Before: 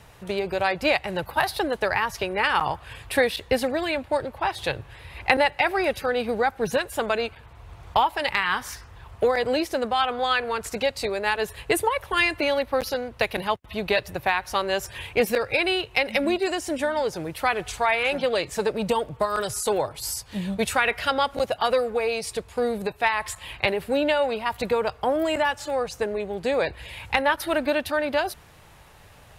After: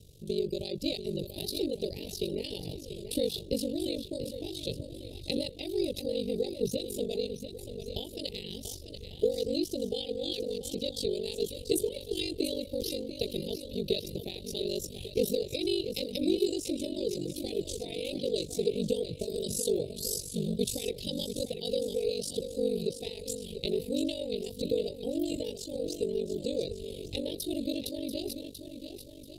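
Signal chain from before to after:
elliptic band-stop filter 440–3,700 Hz, stop band 80 dB
feedback echo with a long and a short gap by turns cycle 1,146 ms, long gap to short 1.5 to 1, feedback 30%, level −9.5 dB
ring modulation 24 Hz

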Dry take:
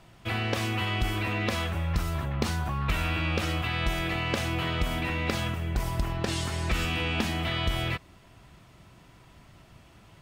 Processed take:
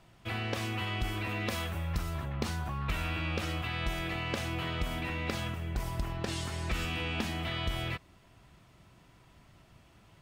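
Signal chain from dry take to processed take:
0:01.29–0:01.98: high-shelf EQ 9,600 Hz +10 dB
level −5.5 dB

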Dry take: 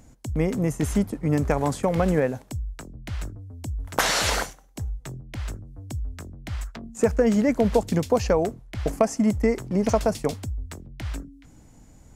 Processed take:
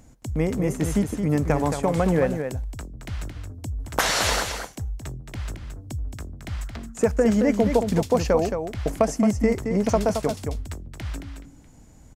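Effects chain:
single-tap delay 221 ms −7 dB

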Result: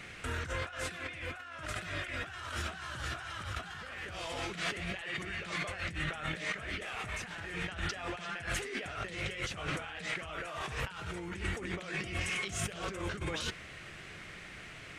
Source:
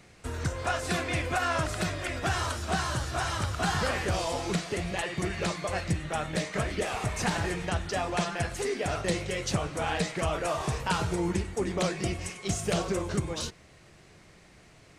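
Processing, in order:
flat-topped bell 2,100 Hz +9 dB
compressor whose output falls as the input rises −36 dBFS, ratio −1
level −4 dB

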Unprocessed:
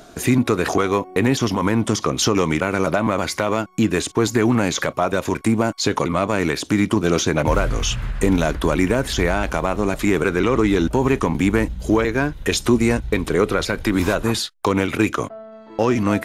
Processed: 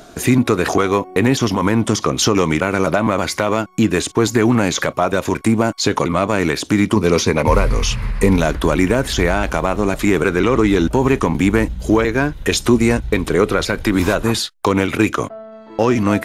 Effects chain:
0:06.95–0:08.40: EQ curve with evenly spaced ripples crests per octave 0.89, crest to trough 7 dB
level +3 dB

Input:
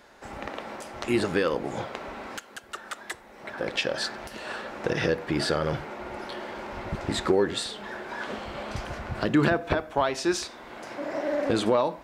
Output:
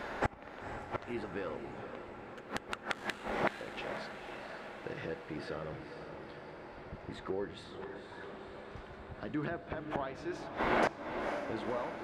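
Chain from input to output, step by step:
bass and treble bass 0 dB, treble −14 dB
gate with flip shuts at −31 dBFS, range −28 dB
on a send: feedback delay with all-pass diffusion 500 ms, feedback 66%, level −8 dB
on the sum: level +13 dB

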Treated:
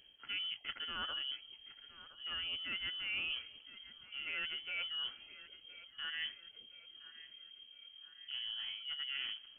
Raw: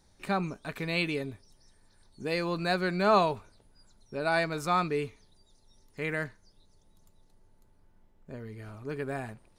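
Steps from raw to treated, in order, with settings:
reversed playback
downward compressor 6 to 1, threshold −40 dBFS, peak gain reduction 19 dB
reversed playback
formants moved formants −5 semitones
feedback echo with a high-pass in the loop 1,016 ms, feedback 55%, high-pass 420 Hz, level −16 dB
voice inversion scrambler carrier 3,200 Hz
level +1.5 dB

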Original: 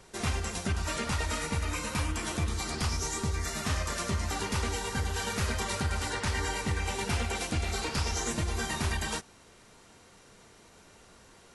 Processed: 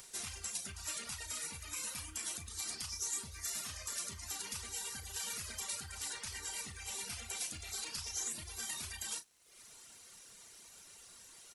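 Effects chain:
brickwall limiter −25.5 dBFS, peak gain reduction 6.5 dB
reverb reduction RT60 0.95 s
first-order pre-emphasis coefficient 0.9
upward compression, threshold −51 dBFS
surface crackle 240 per second −61 dBFS
double-tracking delay 35 ms −11 dB
level +2.5 dB

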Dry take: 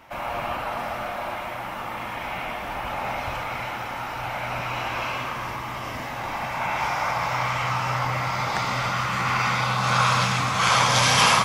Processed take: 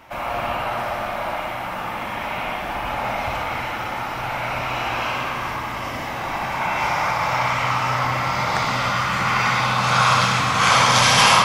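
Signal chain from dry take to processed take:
bucket-brigade delay 60 ms, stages 2,048, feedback 77%, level −8.5 dB
level +3 dB

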